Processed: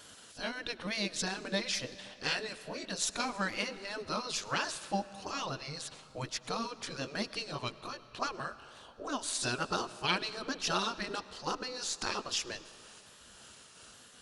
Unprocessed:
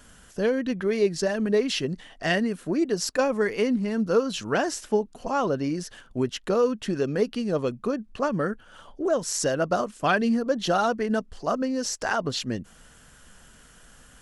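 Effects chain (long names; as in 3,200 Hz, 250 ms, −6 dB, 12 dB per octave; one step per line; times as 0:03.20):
pitch shifter swept by a sawtooth −1.5 semitones, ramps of 871 ms
graphic EQ with 15 bands 160 Hz −8 dB, 1,600 Hz −3 dB, 4,000 Hz +9 dB
gate on every frequency bin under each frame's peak −10 dB weak
comb and all-pass reverb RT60 3 s, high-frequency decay 0.8×, pre-delay 65 ms, DRR 15.5 dB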